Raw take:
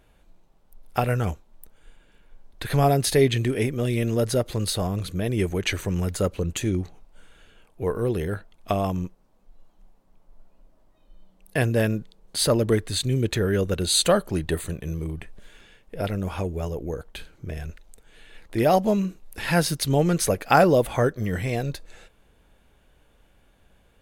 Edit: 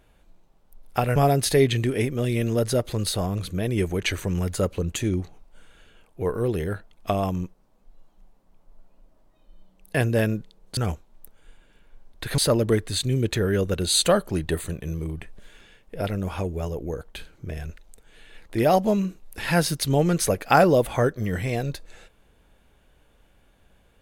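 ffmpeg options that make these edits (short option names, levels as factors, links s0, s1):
-filter_complex "[0:a]asplit=4[s0][s1][s2][s3];[s0]atrim=end=1.162[s4];[s1]atrim=start=2.768:end=12.382[s5];[s2]atrim=start=1.158:end=2.772[s6];[s3]atrim=start=12.378[s7];[s4][s5]acrossfade=d=0.004:c1=hsin:c2=hsin[s8];[s8][s6]acrossfade=d=0.004:c1=hsin:c2=hsin[s9];[s9][s7]acrossfade=d=0.004:c1=hsin:c2=hsin"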